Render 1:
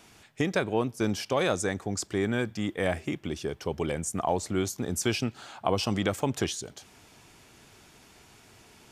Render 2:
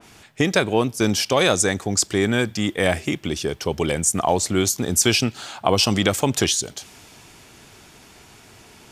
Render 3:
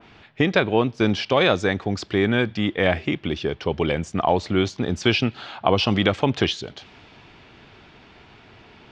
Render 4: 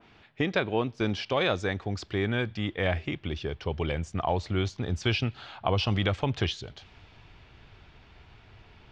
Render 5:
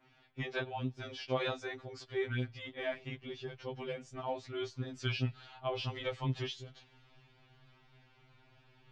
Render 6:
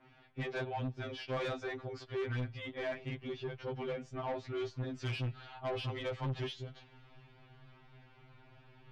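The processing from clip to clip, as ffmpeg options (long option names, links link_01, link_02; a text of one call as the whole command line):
ffmpeg -i in.wav -af "adynamicequalizer=threshold=0.00501:dfrequency=2400:dqfactor=0.7:tfrequency=2400:tqfactor=0.7:attack=5:release=100:ratio=0.375:range=3.5:mode=boostabove:tftype=highshelf,volume=7.5dB" out.wav
ffmpeg -i in.wav -af "lowpass=frequency=3800:width=0.5412,lowpass=frequency=3800:width=1.3066" out.wav
ffmpeg -i in.wav -af "asubboost=boost=5:cutoff=100,volume=-7.5dB" out.wav
ffmpeg -i in.wav -af "afftfilt=real='re*2.45*eq(mod(b,6),0)':imag='im*2.45*eq(mod(b,6),0)':win_size=2048:overlap=0.75,volume=-7dB" out.wav
ffmpeg -i in.wav -af "asoftclip=type=tanh:threshold=-37.5dB,aemphasis=mode=reproduction:type=75fm,volume=4.5dB" out.wav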